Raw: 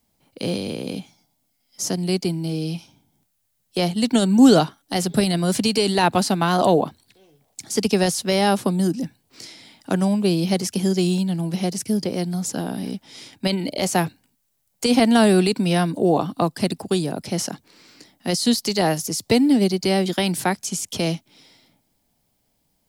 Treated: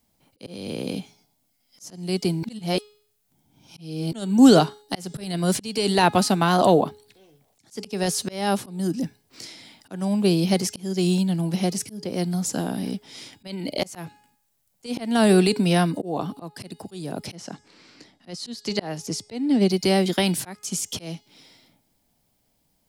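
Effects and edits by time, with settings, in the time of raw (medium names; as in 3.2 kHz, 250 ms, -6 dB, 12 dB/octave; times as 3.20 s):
2.43–4.12 s: reverse
17.35–19.70 s: distance through air 65 m
whole clip: de-hum 418.7 Hz, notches 22; slow attack 334 ms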